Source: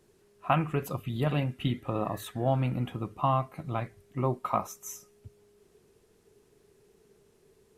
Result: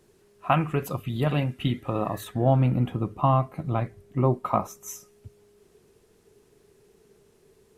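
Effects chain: 2.24–4.88 tilt shelf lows +4 dB; gain +3.5 dB

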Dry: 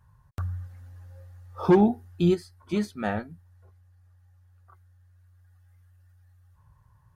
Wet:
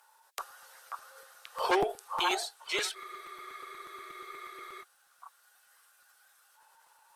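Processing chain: steep high-pass 390 Hz 96 dB/oct; tilt shelf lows -9 dB, about 1200 Hz; in parallel at -1 dB: compressor, threshold -43 dBFS, peak gain reduction 17 dB; on the sum: formant shift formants -2 st; added harmonics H 8 -41 dB, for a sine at -16 dBFS; on a send: delay with a stepping band-pass 0.536 s, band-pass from 1100 Hz, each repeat 1.4 oct, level 0 dB; on the sum: spectral freeze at 2.97, 1.85 s; crackling interface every 0.12 s, samples 256, repeat, from 0.5; gain +1.5 dB

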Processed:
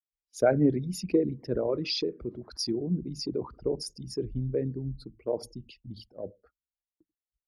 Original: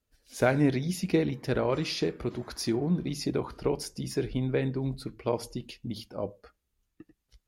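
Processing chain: formant sharpening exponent 2; gate -52 dBFS, range -11 dB; three-band expander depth 70%; gain -2 dB

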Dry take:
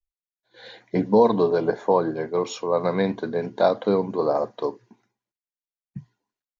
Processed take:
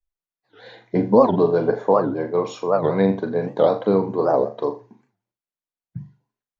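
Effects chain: high shelf 2200 Hz -9.5 dB; flutter echo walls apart 7.1 m, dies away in 0.3 s; record warp 78 rpm, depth 250 cents; gain +3 dB

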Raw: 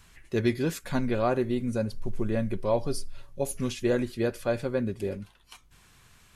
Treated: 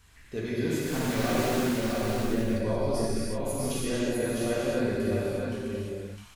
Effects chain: 0.78–1.62 block floating point 3-bit; limiter -20.5 dBFS, peak gain reduction 7.5 dB; on a send: echo 0.658 s -4 dB; on the sum: non-linear reverb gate 0.38 s flat, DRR -8 dB; gain -6 dB

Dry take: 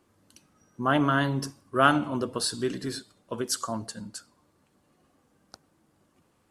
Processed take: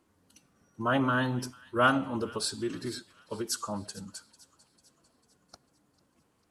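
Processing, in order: thin delay 0.447 s, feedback 51%, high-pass 1900 Hz, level -18.5 dB; formant-preserving pitch shift -1.5 st; gain -3 dB

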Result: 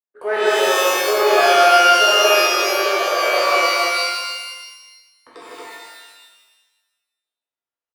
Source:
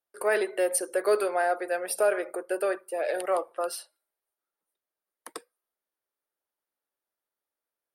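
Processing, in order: Wiener smoothing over 9 samples; LPF 4500 Hz 12 dB/oct; gate -52 dBFS, range -13 dB; on a send: loudspeakers at several distances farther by 53 m -1 dB, 78 m -2 dB; on the sum: shimmer reverb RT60 1.2 s, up +12 st, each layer -2 dB, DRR -7 dB; gain -3 dB

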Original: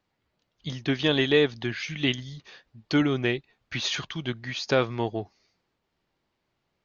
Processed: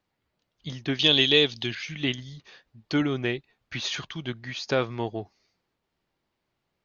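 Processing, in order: 0.99–1.75 resonant high shelf 2300 Hz +9 dB, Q 1.5; gain -2 dB

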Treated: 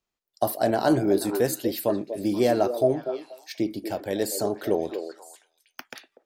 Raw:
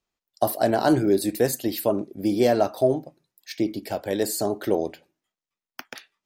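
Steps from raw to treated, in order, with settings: delay with a stepping band-pass 0.241 s, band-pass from 450 Hz, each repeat 1.4 oct, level -6.5 dB; gain -2 dB

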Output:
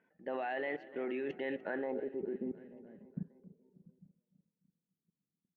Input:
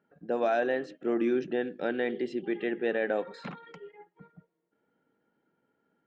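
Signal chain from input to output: low-pass sweep 2200 Hz -> 150 Hz, 1.7–2.78; level quantiser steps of 19 dB; on a send: feedback echo 0.321 s, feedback 60%, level -18.5 dB; on the sum: speed mistake 44.1 kHz file played as 48 kHz; gain +1 dB

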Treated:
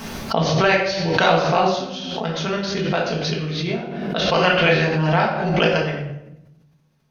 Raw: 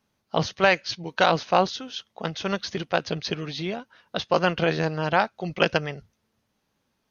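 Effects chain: 4.22–4.84 bell 2500 Hz +8 dB 1.9 oct; shoebox room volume 270 m³, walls mixed, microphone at 1.6 m; backwards sustainer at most 30 dB/s; gain -2 dB

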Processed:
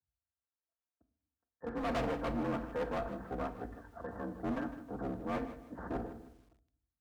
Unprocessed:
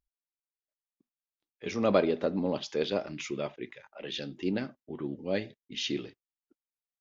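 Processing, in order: minimum comb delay 4.6 ms; steep low-pass 1700 Hz 96 dB/oct; bell 380 Hz -2 dB 0.84 oct; frequency shift +45 Hz; hard clip -32.5 dBFS, distortion -6 dB; shoebox room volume 950 m³, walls furnished, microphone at 0.88 m; lo-fi delay 0.156 s, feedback 35%, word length 10-bit, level -13 dB

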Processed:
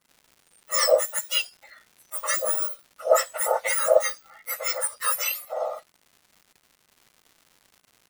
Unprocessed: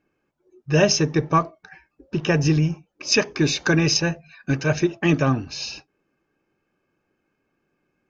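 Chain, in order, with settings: spectrum mirrored in octaves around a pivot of 1800 Hz; crackle 250/s -43 dBFS

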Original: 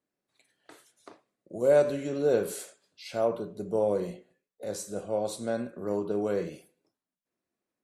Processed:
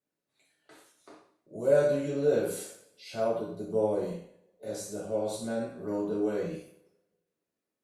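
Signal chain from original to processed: two-slope reverb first 0.53 s, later 1.5 s, from -25 dB, DRR -5.5 dB; gain -8 dB; Opus 64 kbps 48000 Hz

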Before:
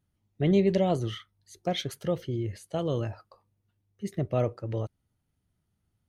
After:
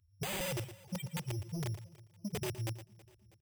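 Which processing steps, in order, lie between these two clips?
time stretch by phase-locked vocoder 0.56×; low shelf 430 Hz +7.5 dB; loudest bins only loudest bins 2; wrapped overs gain 22.5 dB; compressor 6:1, threshold -42 dBFS, peak gain reduction 15.5 dB; envelope phaser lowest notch 170 Hz, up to 1400 Hz, full sweep at -43.5 dBFS; careless resampling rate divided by 8×, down none, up hold; echo 0.116 s -14 dB; soft clip -39 dBFS, distortion -18 dB; high shelf 3500 Hz +9 dB; feedback echo 0.323 s, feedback 56%, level -22 dB; gain +7 dB

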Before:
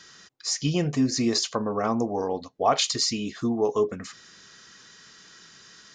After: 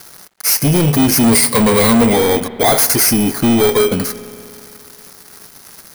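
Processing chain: FFT order left unsorted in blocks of 16 samples; in parallel at -4 dB: hard clip -23 dBFS, distortion -9 dB; 1.23–2.13 on the sum: ripple EQ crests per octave 0.94, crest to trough 16 dB; sample leveller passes 5; spring tank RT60 2.6 s, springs 60 ms, chirp 75 ms, DRR 14.5 dB; bit-crush 9-bit; gain -3 dB

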